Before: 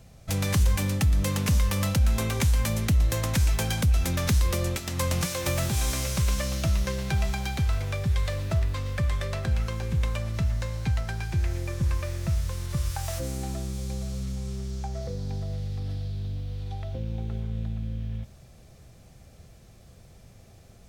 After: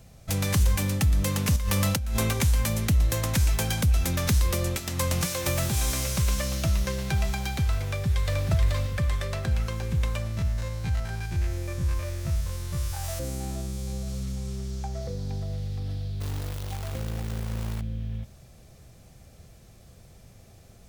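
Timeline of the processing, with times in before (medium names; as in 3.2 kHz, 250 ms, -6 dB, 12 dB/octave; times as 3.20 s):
1.56–2.33 s: compressor with a negative ratio -25 dBFS
7.84–8.43 s: echo throw 430 ms, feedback 20%, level -2.5 dB
10.27–14.08 s: spectrogram pixelated in time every 50 ms
16.20–17.81 s: companded quantiser 4-bit
whole clip: treble shelf 9 kHz +4.5 dB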